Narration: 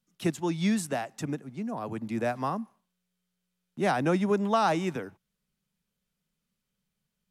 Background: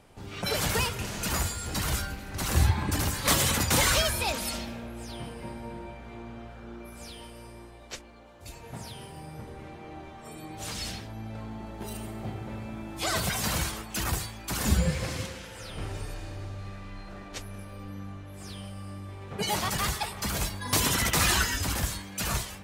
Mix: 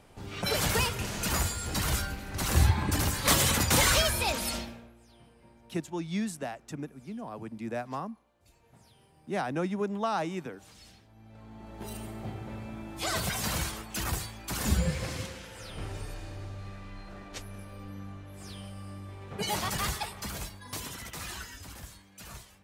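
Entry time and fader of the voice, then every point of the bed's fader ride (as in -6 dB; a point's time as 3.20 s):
5.50 s, -5.5 dB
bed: 4.58 s 0 dB
5.00 s -18.5 dB
11.07 s -18.5 dB
11.84 s -2.5 dB
19.97 s -2.5 dB
20.98 s -16 dB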